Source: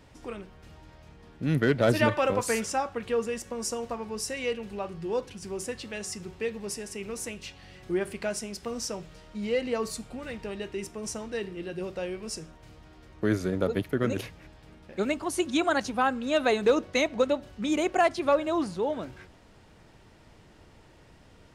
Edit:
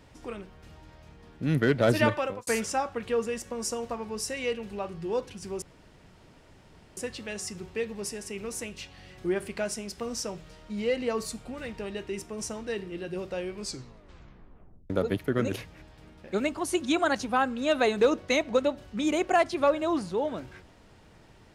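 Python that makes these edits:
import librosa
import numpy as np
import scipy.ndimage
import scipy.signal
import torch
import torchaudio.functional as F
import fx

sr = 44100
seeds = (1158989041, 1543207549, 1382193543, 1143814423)

y = fx.edit(x, sr, fx.fade_out_span(start_s=2.07, length_s=0.4),
    fx.insert_room_tone(at_s=5.62, length_s=1.35),
    fx.tape_stop(start_s=12.19, length_s=1.36), tone=tone)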